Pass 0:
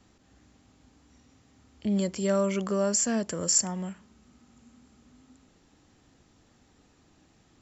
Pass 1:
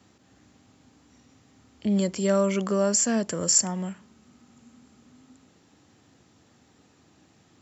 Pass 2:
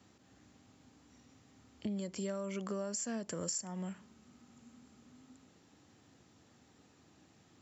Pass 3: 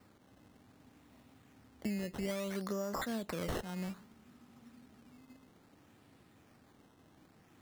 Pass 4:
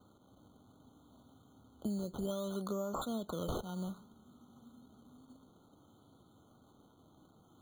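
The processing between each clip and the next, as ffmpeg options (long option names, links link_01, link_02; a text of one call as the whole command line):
ffmpeg -i in.wav -af "highpass=frequency=83:width=0.5412,highpass=frequency=83:width=1.3066,volume=3dB" out.wav
ffmpeg -i in.wav -af "acompressor=threshold=-30dB:ratio=12,volume=-5dB" out.wav
ffmpeg -i in.wav -af "acrusher=samples=13:mix=1:aa=0.000001:lfo=1:lforange=13:lforate=0.61,volume=1dB" out.wav
ffmpeg -i in.wav -af "afftfilt=real='re*eq(mod(floor(b*sr/1024/1500),2),0)':imag='im*eq(mod(floor(b*sr/1024/1500),2),0)':win_size=1024:overlap=0.75" out.wav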